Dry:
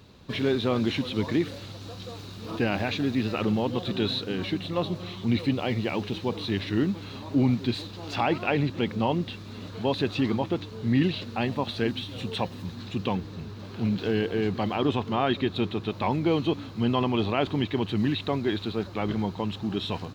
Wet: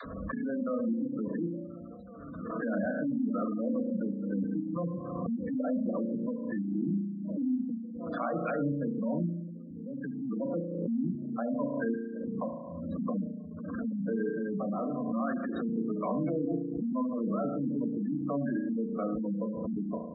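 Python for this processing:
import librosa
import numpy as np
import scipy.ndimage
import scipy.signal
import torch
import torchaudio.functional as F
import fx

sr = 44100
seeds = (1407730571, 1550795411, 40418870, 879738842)

y = scipy.signal.sosfilt(scipy.signal.butter(4, 3600.0, 'lowpass', fs=sr, output='sos'), x)
y = fx.fixed_phaser(y, sr, hz=570.0, stages=8)
y = fx.dispersion(y, sr, late='lows', ms=51.0, hz=370.0)
y = fx.level_steps(y, sr, step_db=17)
y = fx.peak_eq(y, sr, hz=720.0, db=-14.0, octaves=1.9, at=(9.62, 10.29))
y = fx.rev_spring(y, sr, rt60_s=1.3, pass_ms=(35,), chirp_ms=55, drr_db=1.5)
y = fx.clip_hard(y, sr, threshold_db=-29.5, at=(14.33, 15.15))
y = fx.peak_eq(y, sr, hz=2100.0, db=-4.5, octaves=2.0, at=(19.17, 19.79))
y = fx.spec_gate(y, sr, threshold_db=-15, keep='strong')
y = fx.pre_swell(y, sr, db_per_s=32.0)
y = y * librosa.db_to_amplitude(1.5)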